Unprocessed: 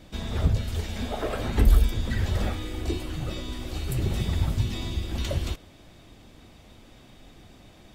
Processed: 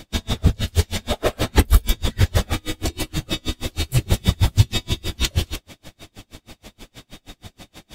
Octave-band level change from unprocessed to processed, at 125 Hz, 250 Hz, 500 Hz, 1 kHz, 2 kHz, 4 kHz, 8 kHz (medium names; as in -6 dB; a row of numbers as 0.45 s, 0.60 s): +6.0 dB, +5.0 dB, +6.0 dB, +7.0 dB, +8.5 dB, +11.0 dB, +12.5 dB